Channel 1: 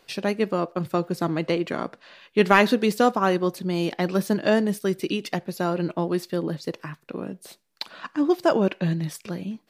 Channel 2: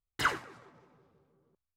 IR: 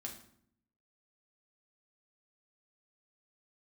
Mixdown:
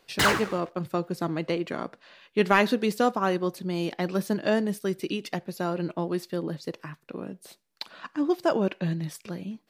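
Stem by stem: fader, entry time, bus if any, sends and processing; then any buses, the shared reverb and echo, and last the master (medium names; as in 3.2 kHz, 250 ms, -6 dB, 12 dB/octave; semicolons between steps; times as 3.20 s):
-4.0 dB, 0.00 s, no send, none
+1.0 dB, 0.00 s, no send, waveshaping leveller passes 5; auto duck -12 dB, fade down 1.00 s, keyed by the first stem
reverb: none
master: none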